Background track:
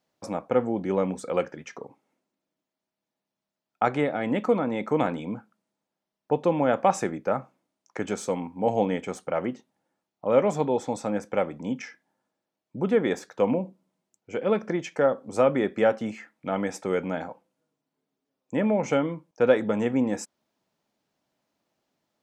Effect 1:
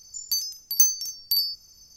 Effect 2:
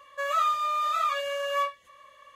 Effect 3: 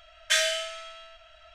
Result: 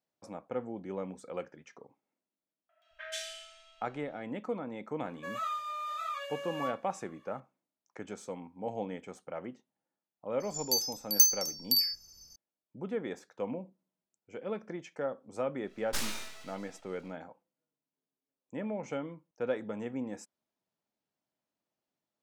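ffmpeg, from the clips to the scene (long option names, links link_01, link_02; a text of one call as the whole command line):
ffmpeg -i bed.wav -i cue0.wav -i cue1.wav -i cue2.wav -filter_complex "[3:a]asplit=2[link_01][link_02];[0:a]volume=-13dB[link_03];[link_01]acrossover=split=240|2000[link_04][link_05][link_06];[link_06]adelay=130[link_07];[link_04]adelay=220[link_08];[link_08][link_05][link_07]amix=inputs=3:normalize=0[link_09];[link_02]aeval=exprs='abs(val(0))':channel_layout=same[link_10];[link_09]atrim=end=1.54,asetpts=PTS-STARTPTS,volume=-14.5dB,afade=type=in:duration=0.004:curve=hsin,afade=type=out:start_time=1.536:duration=0.004:curve=hsin,adelay=2690[link_11];[2:a]atrim=end=2.35,asetpts=PTS-STARTPTS,volume=-10.5dB,afade=type=in:duration=0.004:curve=hsin,afade=type=out:start_time=2.346:duration=0.004:curve=hsin,adelay=222705S[link_12];[1:a]atrim=end=1.96,asetpts=PTS-STARTPTS,volume=-3.5dB,afade=type=in:duration=0.004:curve=hsin,afade=type=out:start_time=1.956:duration=0.004:curve=hsin,adelay=10400[link_13];[link_10]atrim=end=1.54,asetpts=PTS-STARTPTS,volume=-8dB,afade=type=in:duration=0.1,afade=type=out:start_time=1.44:duration=0.1,adelay=15630[link_14];[link_03][link_11][link_12][link_13][link_14]amix=inputs=5:normalize=0" out.wav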